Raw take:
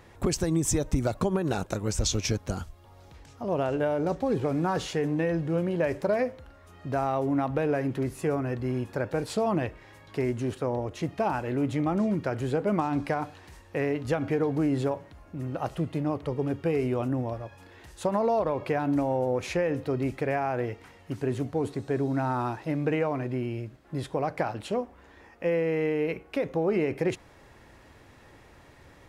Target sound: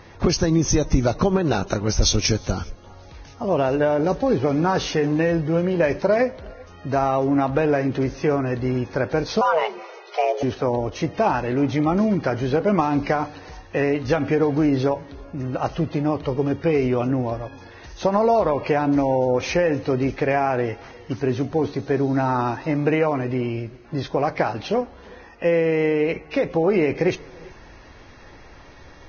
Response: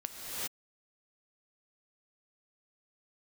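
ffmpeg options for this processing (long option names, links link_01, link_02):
-filter_complex "[0:a]asubboost=boost=2.5:cutoff=52,asettb=1/sr,asplit=3[link_01][link_02][link_03];[link_01]atrim=end=9.414[link_04];[link_02]atrim=start=9.41:end=10.43,asetpts=PTS-STARTPTS,afade=type=in:duration=0.004:curve=qsin,afade=type=out:start_time=1.016:duration=0.004:curve=qsin,afreqshift=310[link_05];[link_03]atrim=start=10.426[link_06];[link_04][link_05]acrossfade=duration=0.004:curve1=hsin:curve2=qsin[link_07];[link_07][link_06]acrossfade=duration=0.004:curve1=qsin:curve2=hsin,asplit=2[link_08][link_09];[1:a]atrim=start_sample=2205[link_10];[link_09][link_10]afir=irnorm=-1:irlink=0,volume=-25.5dB[link_11];[link_08][link_11]amix=inputs=2:normalize=0,volume=7dB" -ar 16000 -c:a libvorbis -b:a 16k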